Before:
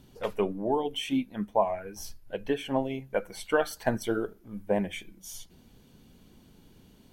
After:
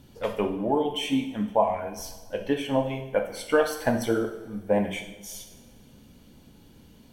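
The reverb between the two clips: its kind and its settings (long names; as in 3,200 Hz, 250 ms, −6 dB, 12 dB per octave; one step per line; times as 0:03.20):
coupled-rooms reverb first 0.73 s, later 2.5 s, from −18 dB, DRR 3.5 dB
level +2 dB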